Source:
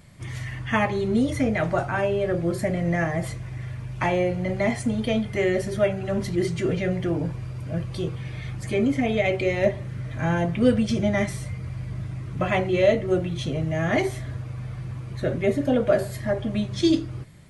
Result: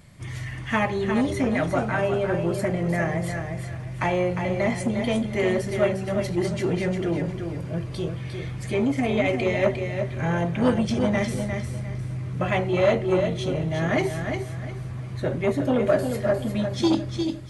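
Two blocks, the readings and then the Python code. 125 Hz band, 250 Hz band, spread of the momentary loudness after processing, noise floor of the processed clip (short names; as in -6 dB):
0.0 dB, 0.0 dB, 9 LU, -34 dBFS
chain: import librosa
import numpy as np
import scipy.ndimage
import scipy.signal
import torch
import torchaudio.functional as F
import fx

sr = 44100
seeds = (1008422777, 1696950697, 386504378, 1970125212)

y = fx.echo_feedback(x, sr, ms=354, feedback_pct=29, wet_db=-6.5)
y = fx.transformer_sat(y, sr, knee_hz=530.0)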